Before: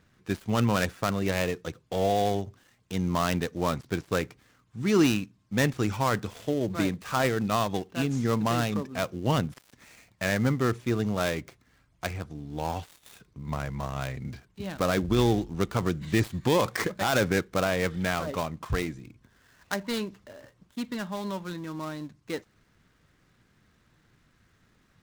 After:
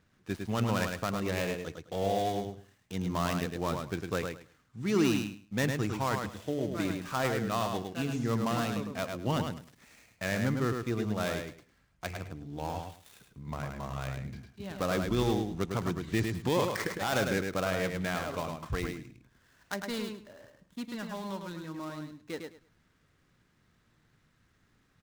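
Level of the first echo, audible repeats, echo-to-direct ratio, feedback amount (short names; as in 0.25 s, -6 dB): -5.0 dB, 3, -5.0 dB, 19%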